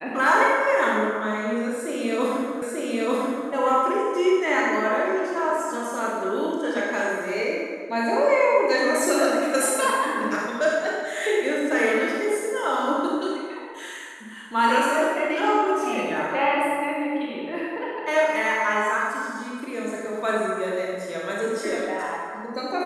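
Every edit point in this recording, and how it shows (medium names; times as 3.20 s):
2.62 s: repeat of the last 0.89 s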